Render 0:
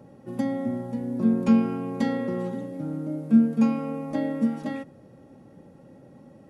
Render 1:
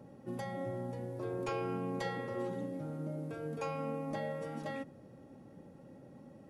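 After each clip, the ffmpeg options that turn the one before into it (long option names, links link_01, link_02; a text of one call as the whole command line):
ffmpeg -i in.wav -af "afftfilt=real='re*lt(hypot(re,im),0.224)':imag='im*lt(hypot(re,im),0.224)':win_size=1024:overlap=0.75,volume=-4.5dB" out.wav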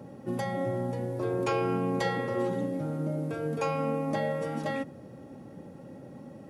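ffmpeg -i in.wav -af "highpass=60,volume=8.5dB" out.wav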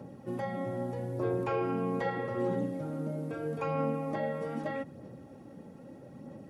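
ffmpeg -i in.wav -filter_complex "[0:a]aphaser=in_gain=1:out_gain=1:delay=4.6:decay=0.31:speed=0.79:type=sinusoidal,acrossover=split=2600[link_01][link_02];[link_02]acompressor=threshold=-57dB:ratio=4:attack=1:release=60[link_03];[link_01][link_03]amix=inputs=2:normalize=0,volume=-3.5dB" out.wav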